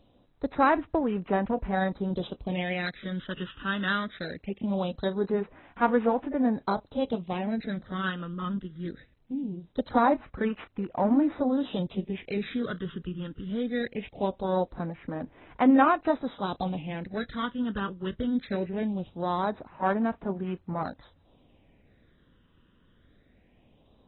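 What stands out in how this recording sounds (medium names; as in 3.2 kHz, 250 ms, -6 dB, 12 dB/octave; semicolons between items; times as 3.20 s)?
a buzz of ramps at a fixed pitch in blocks of 8 samples; phasing stages 12, 0.21 Hz, lowest notch 710–4000 Hz; a quantiser's noise floor 12-bit, dither none; AAC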